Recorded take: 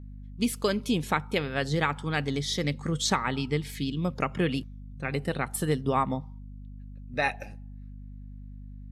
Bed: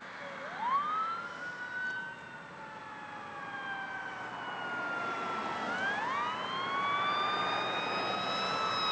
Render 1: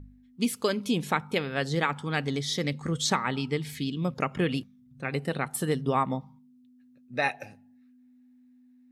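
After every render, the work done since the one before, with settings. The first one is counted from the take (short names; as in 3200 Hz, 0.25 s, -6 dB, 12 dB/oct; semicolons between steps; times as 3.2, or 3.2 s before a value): de-hum 50 Hz, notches 4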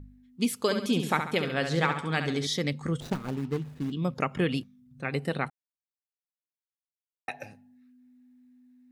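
0.59–2.47 flutter echo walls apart 11.8 m, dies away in 0.56 s; 3–3.92 median filter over 41 samples; 5.5–7.28 mute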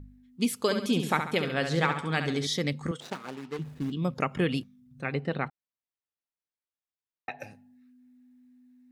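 2.91–3.59 weighting filter A; 5.12–7.39 air absorption 170 m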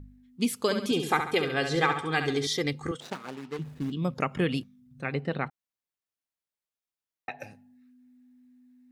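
0.91–2.95 comb 2.5 ms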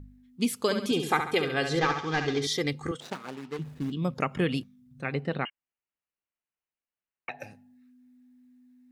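1.79–2.42 CVSD 32 kbps; 5.45–7.29 inverted band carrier 3000 Hz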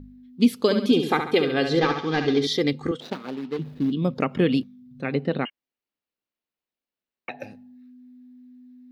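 graphic EQ 250/500/4000/8000 Hz +9/+5/+7/-9 dB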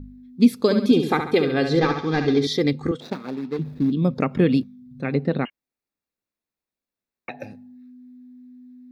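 low shelf 230 Hz +6.5 dB; notch 3000 Hz, Q 5.7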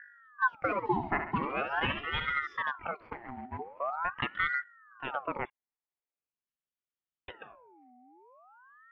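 ladder low-pass 1700 Hz, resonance 60%; ring modulator with a swept carrier 1100 Hz, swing 55%, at 0.44 Hz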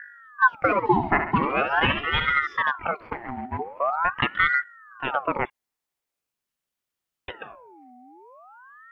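gain +9.5 dB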